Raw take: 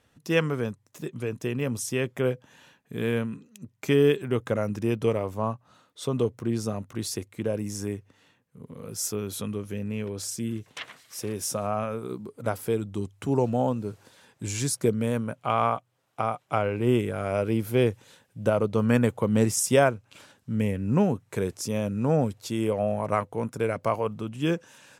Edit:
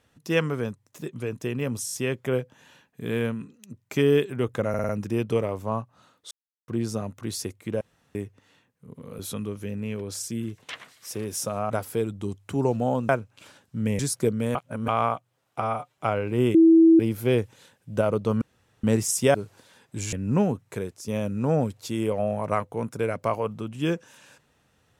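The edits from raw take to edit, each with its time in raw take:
1.85 stutter 0.02 s, 5 plays
4.61 stutter 0.05 s, 5 plays
6.03–6.4 mute
7.53–7.87 room tone
8.91–9.27 cut
11.78–12.43 cut
13.82–14.6 swap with 19.83–20.73
15.16–15.49 reverse
16.21–16.46 stretch 1.5×
17.03–17.48 bleep 327 Hz -11 dBFS
18.9–19.32 room tone
21.28–21.68 fade out quadratic, to -8 dB

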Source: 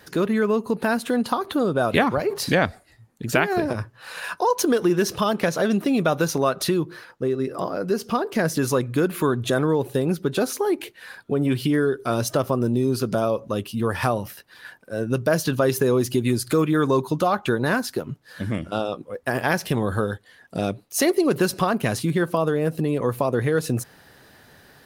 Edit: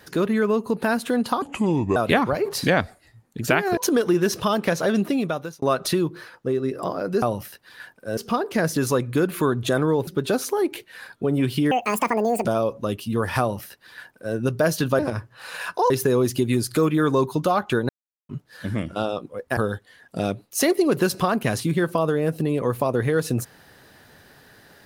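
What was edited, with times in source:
1.42–1.81 speed 72%
3.62–4.53 move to 15.66
5.8–6.38 fade out
9.88–10.15 cut
11.79–13.12 speed 180%
14.07–15.02 copy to 7.98
17.65–18.05 mute
19.33–19.96 cut

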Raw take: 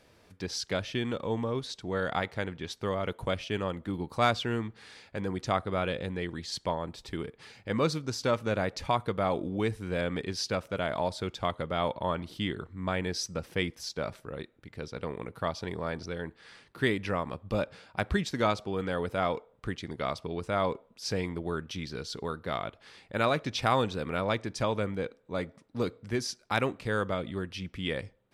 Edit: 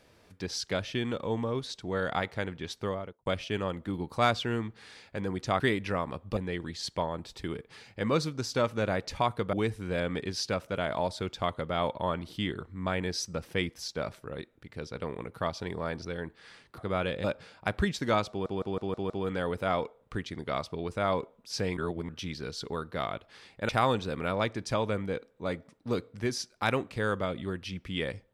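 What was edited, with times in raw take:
2.79–3.26 studio fade out
5.6–6.06 swap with 16.79–17.56
9.22–9.54 cut
18.62 stutter 0.16 s, 6 plays
21.29–21.61 reverse
23.21–23.58 cut

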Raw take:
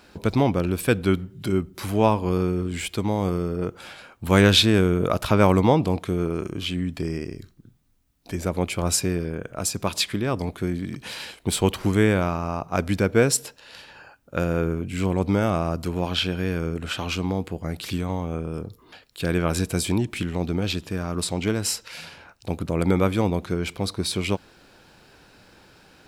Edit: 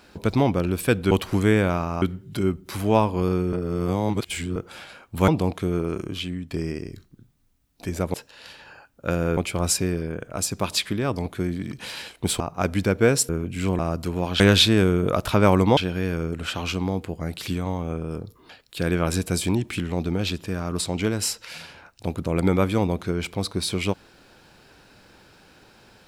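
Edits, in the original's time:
2.62–3.65 reverse
4.37–5.74 move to 16.2
6.5–6.97 fade out, to -8 dB
11.63–12.54 move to 1.11
13.43–14.66 move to 8.6
15.16–15.59 cut

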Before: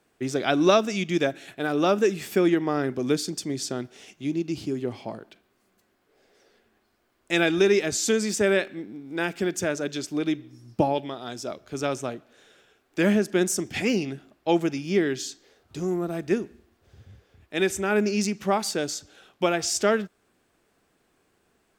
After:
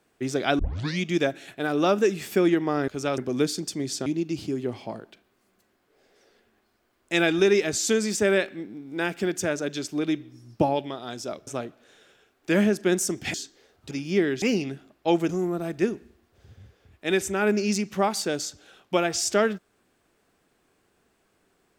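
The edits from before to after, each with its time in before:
0.59 tape start 0.42 s
3.76–4.25 cut
11.66–11.96 move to 2.88
13.83–14.7 swap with 15.21–15.78

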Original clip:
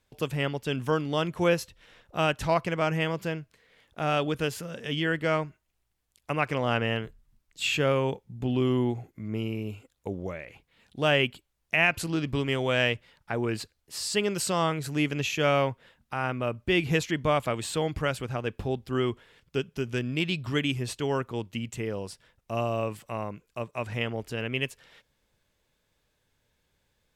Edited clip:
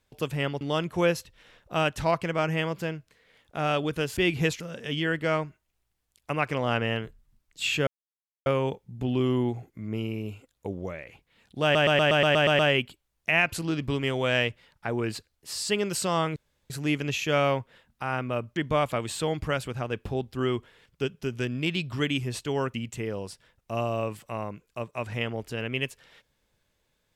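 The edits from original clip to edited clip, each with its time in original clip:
0.61–1.04 cut
7.87 insert silence 0.59 s
11.04 stutter 0.12 s, 9 plays
14.81 insert room tone 0.34 s
16.67–17.1 move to 4.6
21.28–21.54 cut

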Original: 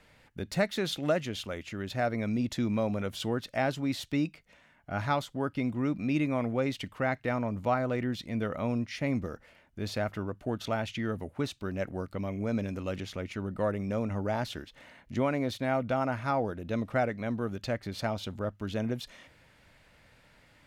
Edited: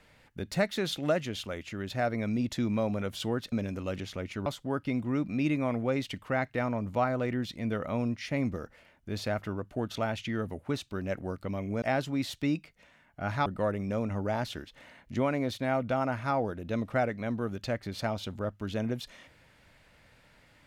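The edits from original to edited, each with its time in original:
3.52–5.16 swap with 12.52–13.46

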